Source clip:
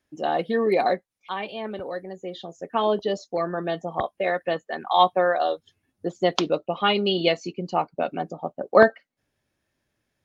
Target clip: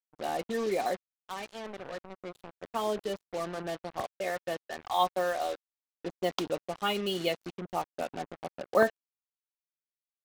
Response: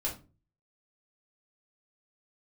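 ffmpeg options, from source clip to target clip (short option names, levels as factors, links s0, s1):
-filter_complex "[0:a]asplit=2[s0][s1];[s1]adelay=90,highpass=300,lowpass=3400,asoftclip=type=hard:threshold=0.299,volume=0.0355[s2];[s0][s2]amix=inputs=2:normalize=0,acrusher=bits=4:mix=0:aa=0.5,volume=0.355"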